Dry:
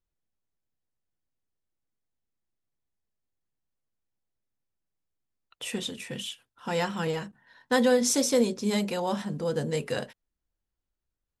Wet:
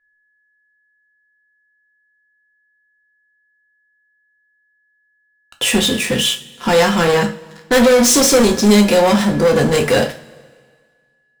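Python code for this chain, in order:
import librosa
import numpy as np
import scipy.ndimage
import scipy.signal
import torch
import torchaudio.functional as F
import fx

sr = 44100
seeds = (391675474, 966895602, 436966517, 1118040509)

y = x + 10.0 ** (-59.0 / 20.0) * np.sin(2.0 * np.pi * 1700.0 * np.arange(len(x)) / sr)
y = fx.leveller(y, sr, passes=5)
y = fx.rev_double_slope(y, sr, seeds[0], early_s=0.31, late_s=1.8, knee_db=-21, drr_db=3.5)
y = y * 10.0 ** (1.5 / 20.0)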